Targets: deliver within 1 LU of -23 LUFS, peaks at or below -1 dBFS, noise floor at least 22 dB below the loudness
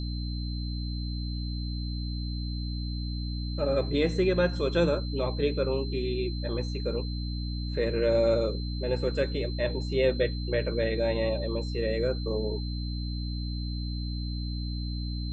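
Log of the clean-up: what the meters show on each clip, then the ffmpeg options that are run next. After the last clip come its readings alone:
hum 60 Hz; highest harmonic 300 Hz; hum level -30 dBFS; steady tone 4.1 kHz; tone level -42 dBFS; loudness -30.0 LUFS; peak level -12.5 dBFS; loudness target -23.0 LUFS
-> -af "bandreject=f=60:t=h:w=4,bandreject=f=120:t=h:w=4,bandreject=f=180:t=h:w=4,bandreject=f=240:t=h:w=4,bandreject=f=300:t=h:w=4"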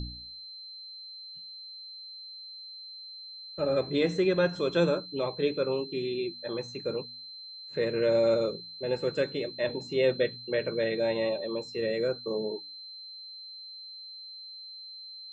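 hum not found; steady tone 4.1 kHz; tone level -42 dBFS
-> -af "bandreject=f=4100:w=30"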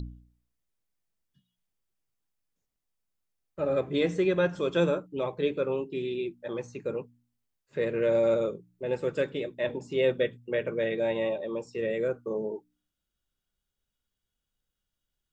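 steady tone not found; loudness -29.5 LUFS; peak level -13.0 dBFS; loudness target -23.0 LUFS
-> -af "volume=2.11"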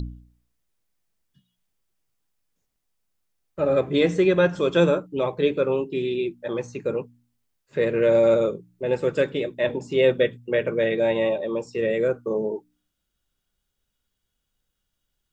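loudness -23.0 LUFS; peak level -6.5 dBFS; noise floor -79 dBFS

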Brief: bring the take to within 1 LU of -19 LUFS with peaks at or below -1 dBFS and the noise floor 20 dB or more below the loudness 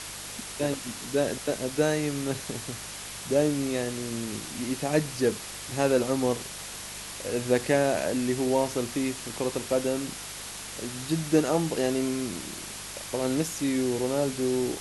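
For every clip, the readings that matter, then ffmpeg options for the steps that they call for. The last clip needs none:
hum 50 Hz; highest harmonic 200 Hz; hum level -51 dBFS; noise floor -39 dBFS; noise floor target -49 dBFS; loudness -28.5 LUFS; peak level -9.5 dBFS; loudness target -19.0 LUFS
-> -af "bandreject=f=50:t=h:w=4,bandreject=f=100:t=h:w=4,bandreject=f=150:t=h:w=4,bandreject=f=200:t=h:w=4"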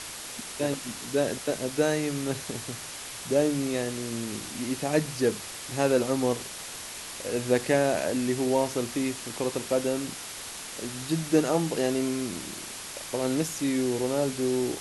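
hum not found; noise floor -40 dBFS; noise floor target -49 dBFS
-> -af "afftdn=nr=9:nf=-40"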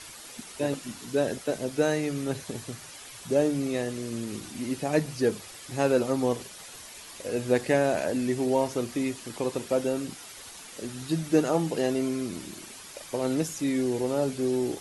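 noise floor -45 dBFS; noise floor target -49 dBFS
-> -af "afftdn=nr=6:nf=-45"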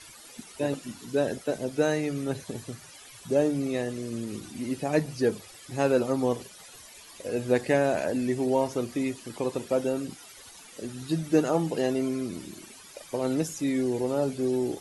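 noise floor -49 dBFS; loudness -28.5 LUFS; peak level -9.5 dBFS; loudness target -19.0 LUFS
-> -af "volume=2.99,alimiter=limit=0.891:level=0:latency=1"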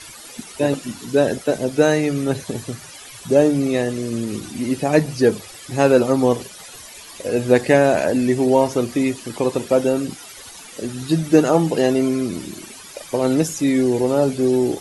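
loudness -19.0 LUFS; peak level -1.0 dBFS; noise floor -40 dBFS

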